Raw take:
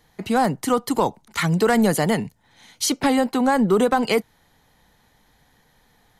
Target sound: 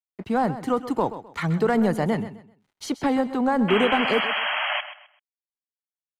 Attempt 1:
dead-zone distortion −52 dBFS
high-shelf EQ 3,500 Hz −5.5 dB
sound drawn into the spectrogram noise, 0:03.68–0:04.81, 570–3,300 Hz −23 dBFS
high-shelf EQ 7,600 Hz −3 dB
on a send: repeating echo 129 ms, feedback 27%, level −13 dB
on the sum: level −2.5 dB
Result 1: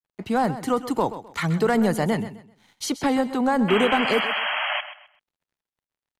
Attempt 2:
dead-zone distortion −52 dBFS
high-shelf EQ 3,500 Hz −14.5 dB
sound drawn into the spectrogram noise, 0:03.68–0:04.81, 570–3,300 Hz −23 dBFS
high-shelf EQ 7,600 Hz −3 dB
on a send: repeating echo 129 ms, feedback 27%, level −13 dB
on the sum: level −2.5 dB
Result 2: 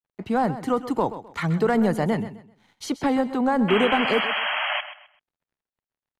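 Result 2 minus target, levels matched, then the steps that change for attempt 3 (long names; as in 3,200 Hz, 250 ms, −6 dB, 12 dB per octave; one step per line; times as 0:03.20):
dead-zone distortion: distortion −8 dB
change: dead-zone distortion −42.5 dBFS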